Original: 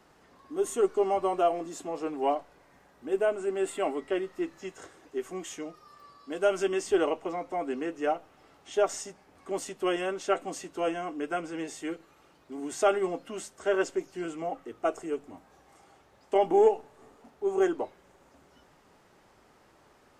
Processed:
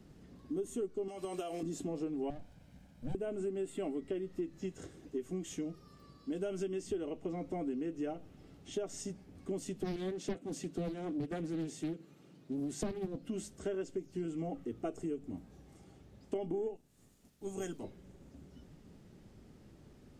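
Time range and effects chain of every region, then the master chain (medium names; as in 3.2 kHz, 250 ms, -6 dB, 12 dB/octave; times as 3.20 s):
1.08–1.63 s: tilt EQ +4 dB/octave + compression 5:1, threshold -29 dBFS
2.30–3.15 s: comb filter that takes the minimum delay 1.3 ms + compression 2:1, threshold -38 dBFS
9.82–13.22 s: high-pass 120 Hz 24 dB/octave + loudspeaker Doppler distortion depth 0.65 ms
16.75–17.83 s: spectral peaks clipped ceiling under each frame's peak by 13 dB + pre-emphasis filter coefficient 0.8
whole clip: FFT filter 200 Hz 0 dB, 990 Hz -24 dB, 3.5 kHz -15 dB; compression 10:1, threshold -45 dBFS; trim +11 dB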